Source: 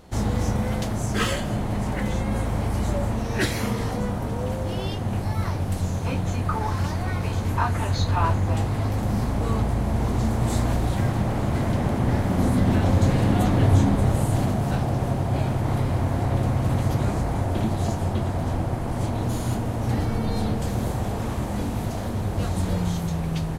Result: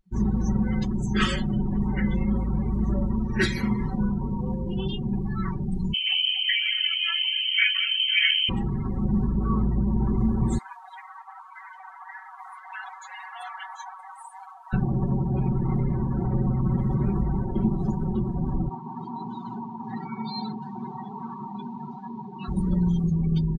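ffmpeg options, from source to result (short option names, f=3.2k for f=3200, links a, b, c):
-filter_complex "[0:a]asettb=1/sr,asplit=3[a][b][c];[a]atrim=end=5.934[d];[b]atrim=start=5.93:end=8.49,asetpts=PTS-STARTPTS,afade=t=in:d=0.004:c=qsin,afade=t=out:st=2.556:d=0.004:c=qsin,lowpass=f=2.7k:t=q:w=0.5098,lowpass=f=2.7k:t=q:w=0.6013,lowpass=f=2.7k:t=q:w=0.9,lowpass=f=2.7k:t=q:w=2.563,afreqshift=-3200[e];[c]atrim=start=8.486[f];[d][e]acrossfade=d=0.004:c1=hsin:c2=qsin[g];[g][f]acrossfade=d=0.004:c1=qsin:c2=hsin,asettb=1/sr,asplit=3[h][i][j];[h]atrim=end=10.584[k];[i]atrim=start=10.58:end=14.73,asetpts=PTS-STARTPTS,afade=t=in:d=0.004:c=qsin,afade=t=out:st=4.146:d=0.004:c=qsin,highpass=f=770:w=0.5412,highpass=f=770:w=1.3066[l];[j]atrim=start=14.726[m];[k][l]acrossfade=d=0.004:c1=hsin:c2=qsin[n];[n][m]acrossfade=d=0.004:c1=qsin:c2=hsin,asettb=1/sr,asplit=3[o][p][q];[o]atrim=end=18.694[r];[p]atrim=start=18.69:end=22.48,asetpts=PTS-STARTPTS,afade=t=in:d=0.004:c=qsin,afade=t=out:st=3.786:d=0.004:c=qsin,highpass=f=190:w=0.5412,highpass=f=190:w=1.3066,equalizer=f=200:t=q:w=4:g=-8,equalizer=f=340:t=q:w=4:g=-8,equalizer=f=560:t=q:w=4:g=-9,equalizer=f=900:t=q:w=4:g=7,equalizer=f=3.9k:t=q:w=4:g=4,lowpass=f=5.6k:w=0.5412,lowpass=f=5.6k:w=1.3066[s];[q]atrim=start=22.476[t];[r][s]acrossfade=d=0.004:c1=hsin:c2=qsin[u];[u][t]acrossfade=d=0.004:c1=qsin:c2=hsin,equalizer=f=620:w=2:g=-14,aecho=1:1:5.3:0.89,afftdn=nr=34:nf=-29"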